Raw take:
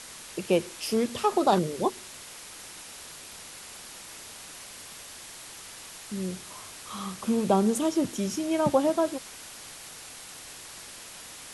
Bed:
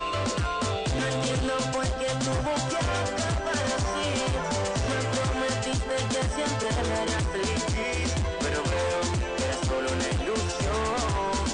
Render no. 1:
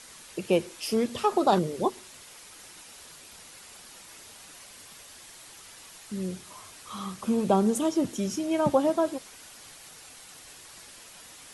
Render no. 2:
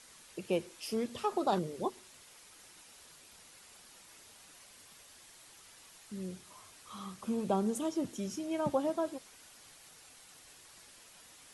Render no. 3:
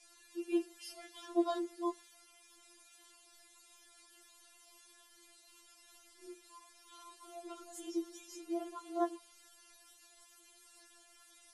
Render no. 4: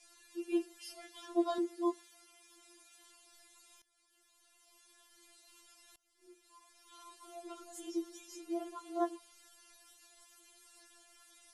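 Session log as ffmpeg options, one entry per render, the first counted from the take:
-af "afftdn=nr=6:nf=-45"
-af "volume=-8.5dB"
-af "flanger=delay=17.5:depth=7.6:speed=2.3,afftfilt=real='re*4*eq(mod(b,16),0)':imag='im*4*eq(mod(b,16),0)':win_size=2048:overlap=0.75"
-filter_complex "[0:a]asettb=1/sr,asplit=3[a][b][c];[a]atrim=end=1.584[d];[b]atrim=start=1.58:end=2.93,asetpts=PTS-STARTPTS,afade=t=in:d=0.004:c=qsin,afade=t=out:st=1.346:d=0.004:c=qsin,lowshelf=f=190:t=q:w=3:g=-10[e];[c]atrim=start=2.926[f];[d][e]acrossfade=d=0.004:c1=hsin:c2=qsin[g];[g][f]acrossfade=d=0.004:c1=qsin:c2=hsin,asplit=3[h][i][j];[h]atrim=end=3.82,asetpts=PTS-STARTPTS,afade=t=out:st=3.816:d=0.004:c=hsin:silence=0.112202[k];[i]atrim=start=3.82:end=5.96,asetpts=PTS-STARTPTS,afade=t=in:d=1.58:silence=0.112202,afade=t=out:st=2.136:d=0.004:c=hsin:silence=0.0668344[l];[j]atrim=start=5.96,asetpts=PTS-STARTPTS,afade=t=in:d=1.11:silence=0.0668344[m];[k][l][m]concat=n=3:v=0:a=1"

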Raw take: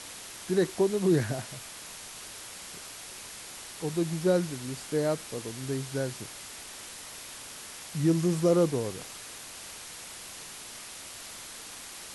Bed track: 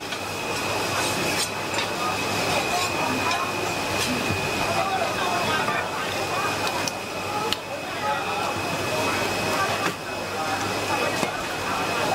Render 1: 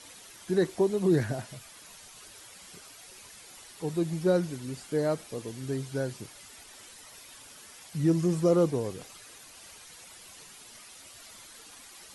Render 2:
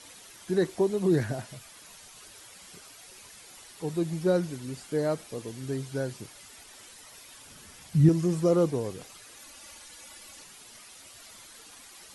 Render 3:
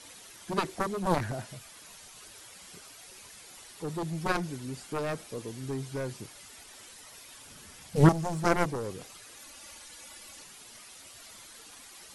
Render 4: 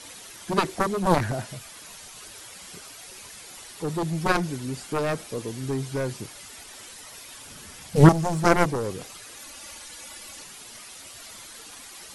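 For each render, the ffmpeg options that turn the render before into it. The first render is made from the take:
-af "afftdn=nr=10:nf=-44"
-filter_complex "[0:a]asettb=1/sr,asplit=3[a][b][c];[a]atrim=end=7.474[d];[b]atrim=start=7.47:end=8.09,asetpts=PTS-STARTPTS,afade=t=in:d=0.004:c=qsin,afade=t=out:st=0.616:d=0.004:c=qsin,bass=f=250:g=12,treble=f=4k:g=-1[e];[c]atrim=start=8.086[f];[d][e]acrossfade=d=0.004:c1=hsin:c2=qsin[g];[g][f]acrossfade=d=0.004:c1=qsin:c2=hsin,asettb=1/sr,asplit=3[h][i][j];[h]atrim=end=9.374[k];[i]atrim=start=9.37:end=10.44,asetpts=PTS-STARTPTS,afade=t=in:d=0.004:c=qsin,afade=t=out:st=1.066:d=0.004:c=qsin,aecho=1:1:3.5:0.65,atrim=end_sample=47187[l];[j]atrim=start=10.436[m];[k][l]acrossfade=d=0.004:c1=hsin:c2=qsin[n];[n][m]acrossfade=d=0.004:c1=qsin:c2=hsin"
-af "aeval=exprs='0.376*(cos(1*acos(clip(val(0)/0.376,-1,1)))-cos(1*PI/2))+0.106*(cos(7*acos(clip(val(0)/0.376,-1,1)))-cos(7*PI/2))':c=same"
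-af "volume=6.5dB,alimiter=limit=-3dB:level=0:latency=1"

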